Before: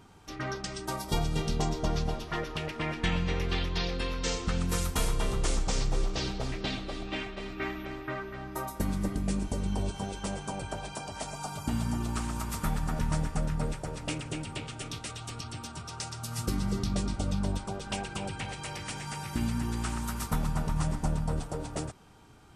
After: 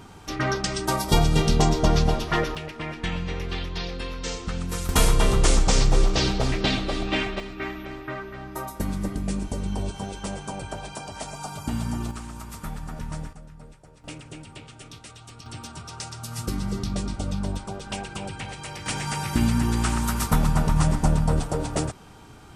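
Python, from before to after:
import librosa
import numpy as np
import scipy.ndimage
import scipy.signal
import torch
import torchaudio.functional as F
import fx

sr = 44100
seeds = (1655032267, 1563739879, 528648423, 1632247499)

y = fx.gain(x, sr, db=fx.steps((0.0, 10.0), (2.55, 0.0), (4.89, 10.0), (7.4, 2.5), (12.11, -4.0), (13.33, -14.5), (14.04, -5.0), (15.46, 2.0), (18.86, 9.0)))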